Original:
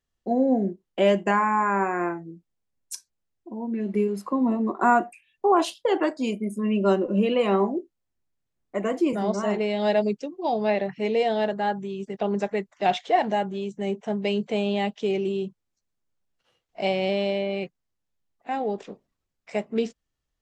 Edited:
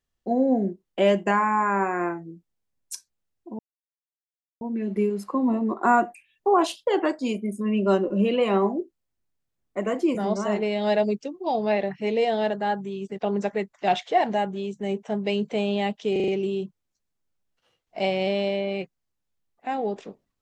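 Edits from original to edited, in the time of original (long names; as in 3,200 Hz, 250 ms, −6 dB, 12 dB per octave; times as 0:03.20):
0:03.59: splice in silence 1.02 s
0:15.10: stutter 0.04 s, 5 plays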